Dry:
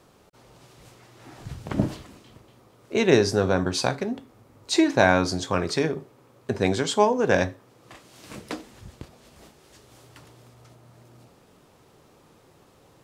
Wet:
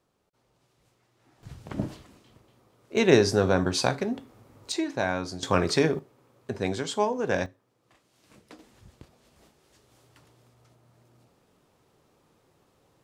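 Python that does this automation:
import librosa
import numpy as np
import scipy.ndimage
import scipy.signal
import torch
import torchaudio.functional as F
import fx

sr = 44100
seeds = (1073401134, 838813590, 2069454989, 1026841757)

y = fx.gain(x, sr, db=fx.steps((0.0, -17.0), (1.43, -7.0), (2.97, -0.5), (4.72, -9.5), (5.43, 1.5), (5.99, -6.0), (7.46, -16.0), (8.59, -9.0)))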